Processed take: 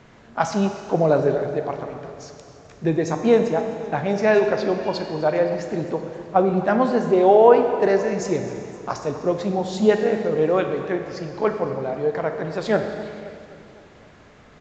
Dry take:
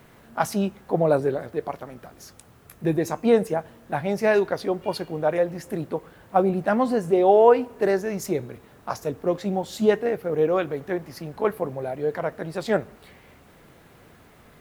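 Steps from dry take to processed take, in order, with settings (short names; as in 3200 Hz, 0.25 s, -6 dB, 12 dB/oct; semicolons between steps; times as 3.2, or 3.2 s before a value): Schroeder reverb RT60 2.2 s, combs from 29 ms, DRR 6 dB; downsampling 16000 Hz; warbling echo 0.259 s, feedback 60%, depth 121 cents, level -18.5 dB; gain +2 dB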